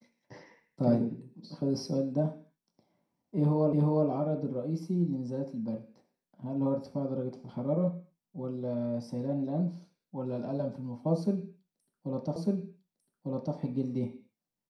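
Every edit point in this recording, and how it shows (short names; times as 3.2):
3.73 repeat of the last 0.36 s
12.36 repeat of the last 1.2 s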